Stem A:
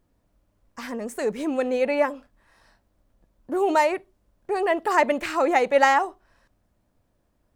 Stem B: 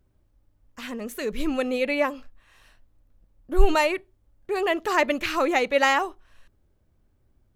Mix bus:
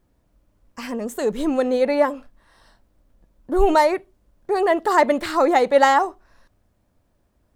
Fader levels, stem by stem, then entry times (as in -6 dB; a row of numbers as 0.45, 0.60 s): +2.5, -5.5 dB; 0.00, 0.00 s